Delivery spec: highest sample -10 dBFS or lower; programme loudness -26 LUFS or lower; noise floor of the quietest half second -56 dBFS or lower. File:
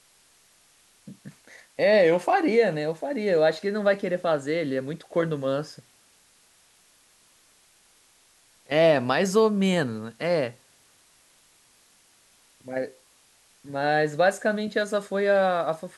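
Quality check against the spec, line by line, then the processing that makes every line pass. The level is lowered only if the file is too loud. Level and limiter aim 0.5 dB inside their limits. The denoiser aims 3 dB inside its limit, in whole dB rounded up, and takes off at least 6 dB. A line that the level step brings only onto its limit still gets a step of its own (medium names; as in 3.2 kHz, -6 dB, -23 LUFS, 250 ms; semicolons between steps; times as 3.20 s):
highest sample -7.0 dBFS: fail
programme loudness -24.0 LUFS: fail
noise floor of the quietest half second -60 dBFS: pass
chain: trim -2.5 dB; peak limiter -10.5 dBFS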